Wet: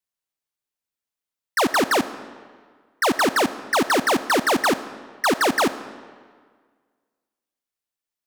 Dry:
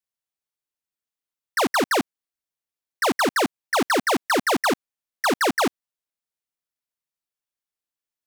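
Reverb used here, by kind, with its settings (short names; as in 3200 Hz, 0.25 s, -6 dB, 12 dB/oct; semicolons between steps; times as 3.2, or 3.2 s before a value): digital reverb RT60 1.7 s, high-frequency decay 0.8×, pre-delay 20 ms, DRR 13.5 dB; gain +1.5 dB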